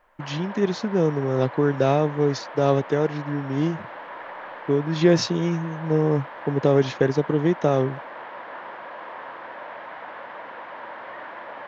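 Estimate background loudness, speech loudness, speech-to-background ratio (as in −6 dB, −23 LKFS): −37.5 LKFS, −23.0 LKFS, 14.5 dB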